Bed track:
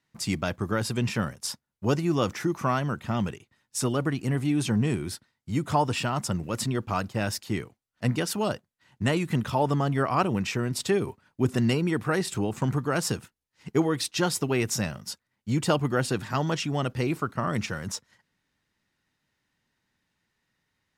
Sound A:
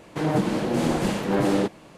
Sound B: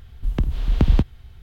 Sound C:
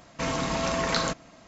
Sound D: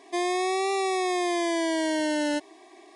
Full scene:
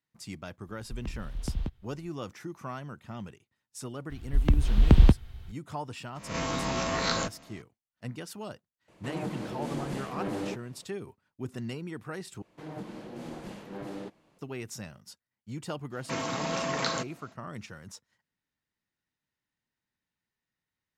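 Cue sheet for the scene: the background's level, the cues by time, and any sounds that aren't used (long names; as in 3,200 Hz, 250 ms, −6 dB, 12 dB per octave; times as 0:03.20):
bed track −13 dB
0:00.67: mix in B −16 dB
0:04.10: mix in B −0.5 dB
0:06.15: mix in C −4.5 dB + peak hold with a rise ahead of every peak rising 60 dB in 0.45 s
0:08.88: mix in A −12.5 dB
0:12.42: overwrite with A −18 dB + parametric band 8,700 Hz −3.5 dB
0:15.90: mix in C −4 dB, fades 0.05 s + high-pass filter 150 Hz
not used: D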